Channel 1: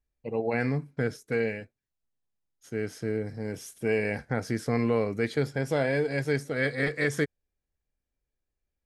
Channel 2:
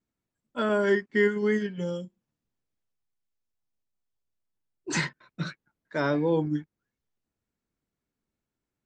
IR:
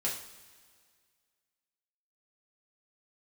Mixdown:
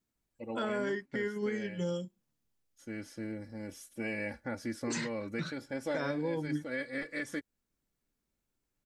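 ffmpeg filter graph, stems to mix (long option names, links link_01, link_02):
-filter_complex "[0:a]aecho=1:1:3.5:0.76,adelay=150,volume=-8.5dB[link_01];[1:a]highshelf=frequency=4400:gain=6.5,alimiter=limit=-22dB:level=0:latency=1:release=366,volume=-1dB,asplit=2[link_02][link_03];[link_03]apad=whole_len=397379[link_04];[link_01][link_04]sidechaincompress=threshold=-31dB:ratio=8:attack=16:release=424[link_05];[link_05][link_02]amix=inputs=2:normalize=0,alimiter=level_in=0.5dB:limit=-24dB:level=0:latency=1:release=402,volume=-0.5dB"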